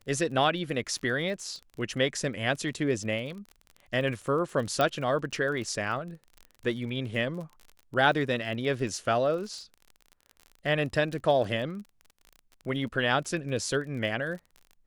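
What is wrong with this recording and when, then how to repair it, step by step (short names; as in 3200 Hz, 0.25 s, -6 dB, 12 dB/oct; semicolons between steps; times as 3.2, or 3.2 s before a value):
crackle 31/s -37 dBFS
4.81 pop -13 dBFS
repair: de-click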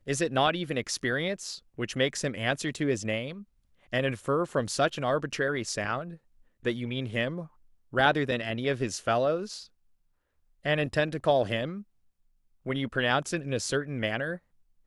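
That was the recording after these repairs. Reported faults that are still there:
none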